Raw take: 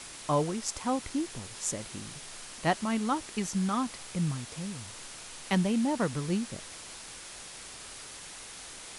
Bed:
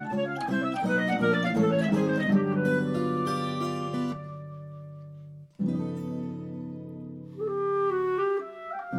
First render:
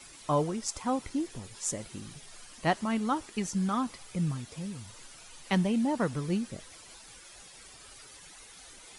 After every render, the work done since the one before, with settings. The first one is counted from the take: denoiser 11 dB, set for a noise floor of -46 dBFS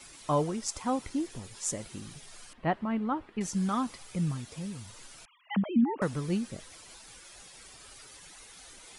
2.53–3.41 air absorption 490 m; 5.25–6.02 sine-wave speech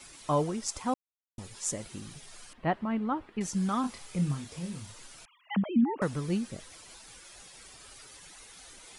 0.94–1.38 mute; 3.81–4.93 doubler 28 ms -6 dB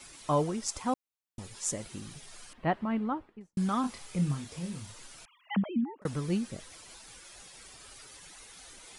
2.97–3.57 studio fade out; 5.57–6.05 fade out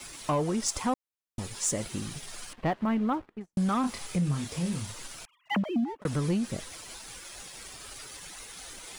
compressor 6:1, threshold -30 dBFS, peak gain reduction 8 dB; sample leveller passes 2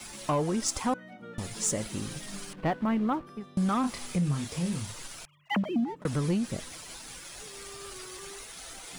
add bed -21.5 dB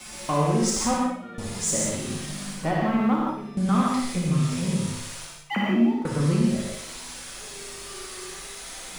on a send: flutter echo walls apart 10.3 m, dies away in 0.51 s; on the sum: non-linear reverb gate 0.2 s flat, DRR -3 dB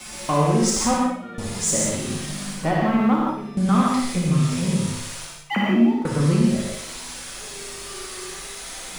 gain +3.5 dB

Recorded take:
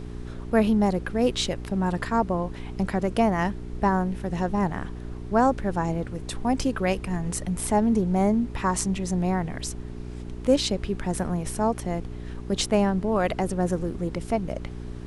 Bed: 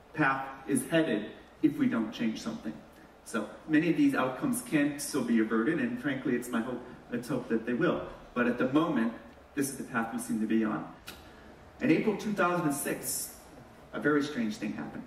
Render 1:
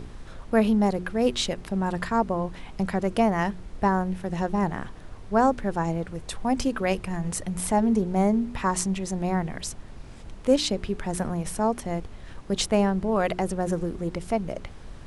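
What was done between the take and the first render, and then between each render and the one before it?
de-hum 60 Hz, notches 7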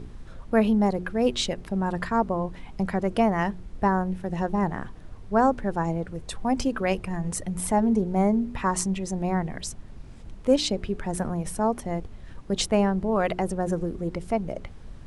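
denoiser 6 dB, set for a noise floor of -42 dBFS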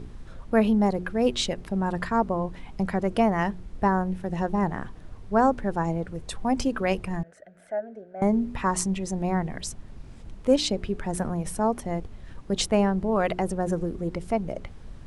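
7.23–8.22 double band-pass 1000 Hz, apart 1.3 oct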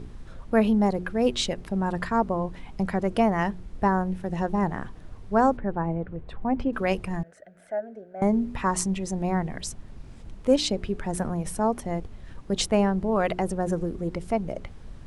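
5.57–6.73 air absorption 480 m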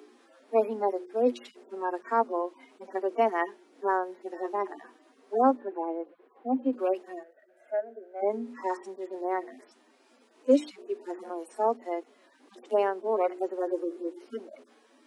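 median-filter separation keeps harmonic; steep high-pass 250 Hz 96 dB/oct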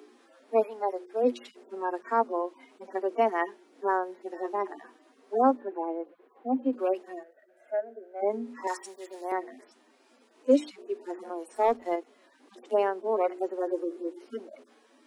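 0.62–1.23 HPF 700 Hz -> 290 Hz; 8.67–9.32 tilt +4.5 dB/oct; 11.55–11.96 sample leveller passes 1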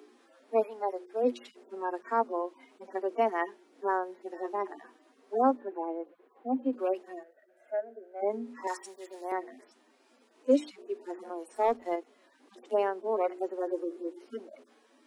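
gain -2.5 dB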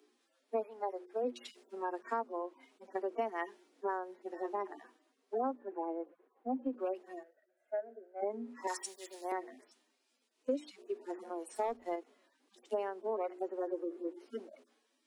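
compressor 8:1, threshold -33 dBFS, peak gain reduction 15 dB; three-band expander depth 70%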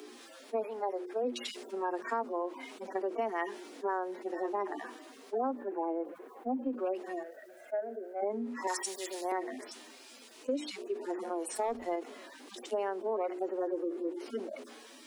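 fast leveller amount 50%

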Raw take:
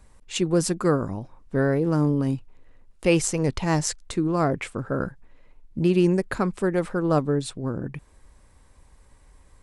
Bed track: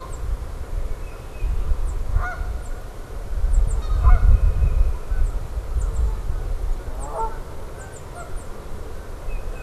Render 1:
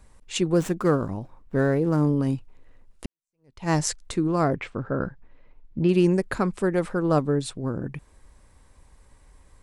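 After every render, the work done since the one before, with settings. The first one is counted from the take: 0.53–2.03 median filter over 9 samples; 3.06–3.69 fade in exponential; 4.56–5.89 air absorption 160 m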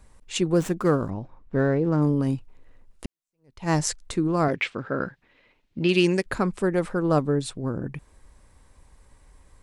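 1.1–2.02 air absorption 100 m; 4.48–6.26 weighting filter D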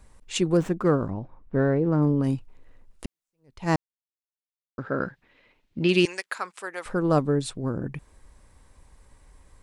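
0.57–2.24 high shelf 3600 Hz -11.5 dB; 3.76–4.78 mute; 6.05–6.86 HPF 1000 Hz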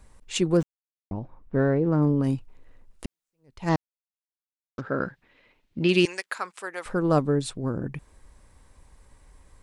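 0.63–1.11 mute; 3.69–4.81 CVSD 32 kbps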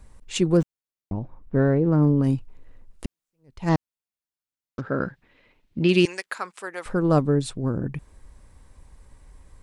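low shelf 290 Hz +5 dB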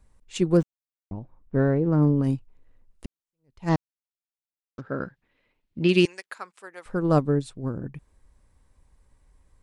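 upward expander 1.5:1, over -36 dBFS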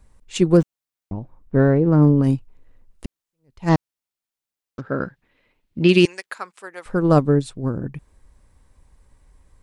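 gain +6 dB; limiter -3 dBFS, peak gain reduction 2.5 dB

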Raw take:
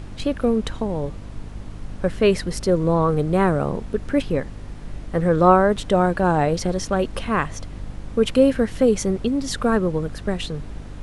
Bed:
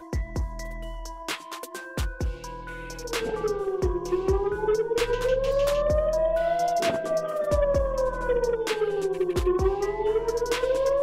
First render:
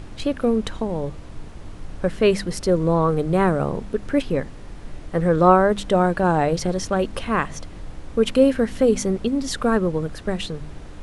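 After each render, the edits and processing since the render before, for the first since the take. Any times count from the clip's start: de-hum 50 Hz, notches 5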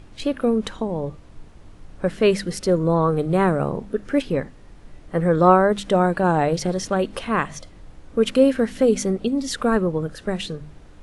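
noise print and reduce 8 dB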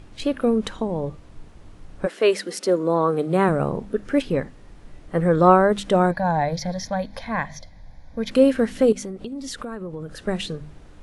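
2.05–3.48 HPF 350 Hz -> 150 Hz 24 dB/oct; 6.11–8.31 fixed phaser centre 1900 Hz, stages 8; 8.92–10.12 compressor, threshold -29 dBFS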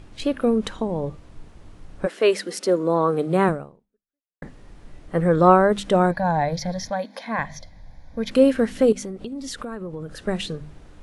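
3.49–4.42 fade out exponential; 6.9–7.39 brick-wall FIR high-pass 190 Hz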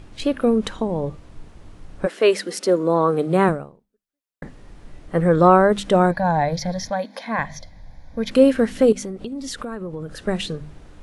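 gain +2 dB; limiter -3 dBFS, peak gain reduction 2 dB

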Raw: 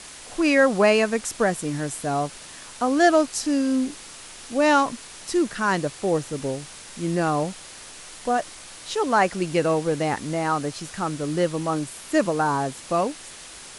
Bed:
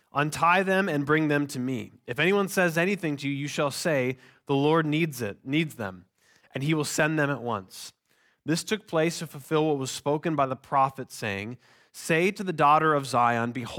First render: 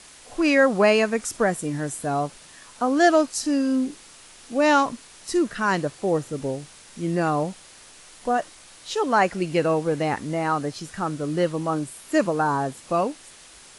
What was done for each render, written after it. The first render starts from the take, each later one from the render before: noise print and reduce 6 dB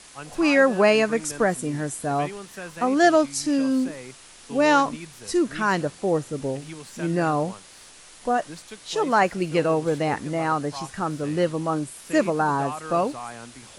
add bed -14 dB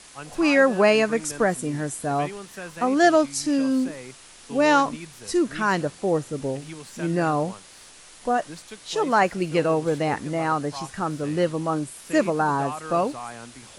nothing audible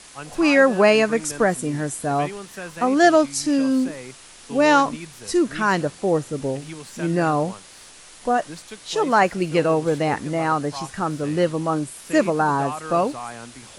gain +2.5 dB

